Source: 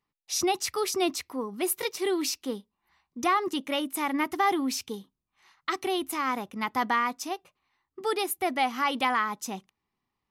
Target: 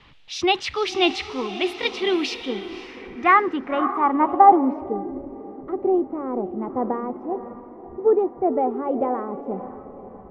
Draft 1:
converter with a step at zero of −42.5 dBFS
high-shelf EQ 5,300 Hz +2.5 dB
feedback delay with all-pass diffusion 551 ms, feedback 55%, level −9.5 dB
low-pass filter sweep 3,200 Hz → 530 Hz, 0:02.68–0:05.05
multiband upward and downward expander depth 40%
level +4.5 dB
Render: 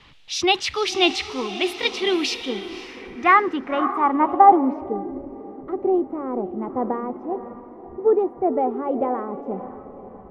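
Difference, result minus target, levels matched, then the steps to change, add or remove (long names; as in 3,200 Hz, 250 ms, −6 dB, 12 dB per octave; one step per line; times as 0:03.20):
8,000 Hz band +6.0 dB
change: high-shelf EQ 5,300 Hz −8.5 dB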